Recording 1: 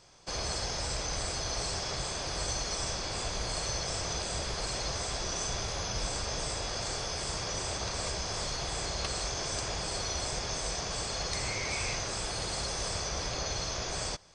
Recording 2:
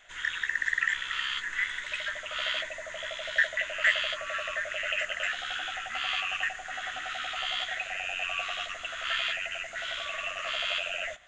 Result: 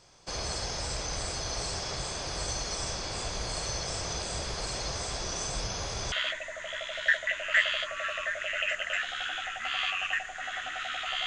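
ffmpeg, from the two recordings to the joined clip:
-filter_complex "[0:a]apad=whole_dur=11.26,atrim=end=11.26,asplit=2[a][b];[a]atrim=end=5.502[c];[b]atrim=start=5.498:end=6.122,asetpts=PTS-STARTPTS,areverse[d];[1:a]atrim=start=2.418:end=7.56[e];[c][d]acrossfade=d=0.004:c1=hsin:c2=hsin[f];[f][e]acrossfade=d=0.004:c1=hsin:c2=hsin"

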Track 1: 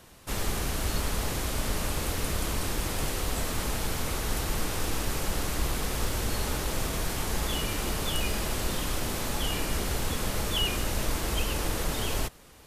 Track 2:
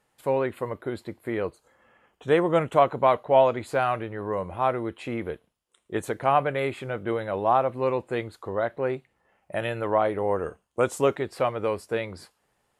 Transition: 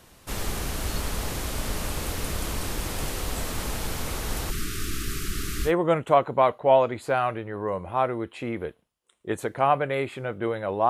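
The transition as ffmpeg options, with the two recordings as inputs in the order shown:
-filter_complex "[0:a]asplit=3[a][b][c];[a]afade=t=out:st=4.5:d=0.02[d];[b]asuperstop=centerf=700:order=20:qfactor=0.95,afade=t=in:st=4.5:d=0.02,afade=t=out:st=5.72:d=0.02[e];[c]afade=t=in:st=5.72:d=0.02[f];[d][e][f]amix=inputs=3:normalize=0,apad=whole_dur=10.89,atrim=end=10.89,atrim=end=5.72,asetpts=PTS-STARTPTS[g];[1:a]atrim=start=2.29:end=7.54,asetpts=PTS-STARTPTS[h];[g][h]acrossfade=d=0.08:c1=tri:c2=tri"

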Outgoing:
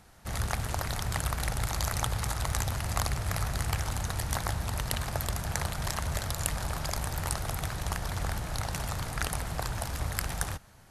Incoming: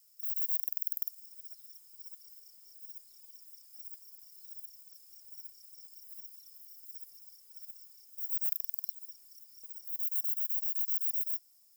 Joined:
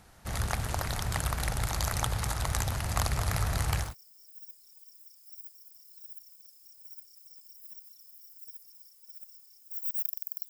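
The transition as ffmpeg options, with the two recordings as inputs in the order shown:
-filter_complex "[0:a]asettb=1/sr,asplit=3[a][b][c];[a]atrim=end=2.744[d];[b]atrim=start=2.74:end=3.95,asetpts=PTS-STARTPTS,afade=t=in:d=0.004:c=qsin,afade=t=out:st=1.206:d=0.004:c=qsin,aecho=1:1:217:0.447,atrim=end_sample=53361[e];[c]atrim=start=3.946[f];[d][e]acrossfade=d=0.004:c1=hsin:c2=qsin[g];[g][f]acrossfade=d=0.004:c1=qsin:c2=hsin,apad=whole_dur=10.49,atrim=end=10.49,atrim=end=3.95,asetpts=PTS-STARTPTS[h];[1:a]atrim=start=2.26:end=8.96,asetpts=PTS-STARTPTS[i];[h][i]acrossfade=d=0.16:c1=tri:c2=tri"

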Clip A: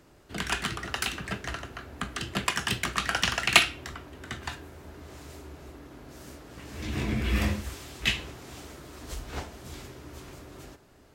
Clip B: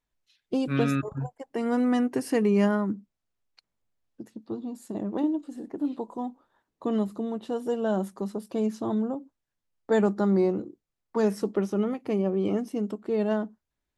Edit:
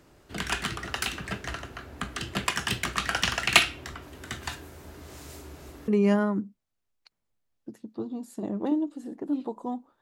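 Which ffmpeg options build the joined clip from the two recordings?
-filter_complex "[0:a]asettb=1/sr,asplit=3[a][b][c];[a]atrim=end=4.024[d];[b]atrim=start=4.02:end=5.88,asetpts=PTS-STARTPTS,afade=t=in:d=0.004:c=qsin,afade=t=out:st=1.856:d=0.004:c=qsin,highshelf=f=5.1k:g=7.5[e];[c]atrim=start=5.876[f];[d][e]acrossfade=d=0.004:c1=hsin:c2=qsin[g];[g][f]acrossfade=d=0.004:c1=qsin:c2=hsin,apad=whole_dur=10.01,atrim=end=10.01,atrim=end=5.882[h];[1:a]atrim=start=2.398:end=6.53[i];[h][i]acrossfade=d=0.004:c1=hsin:c2=hsin"

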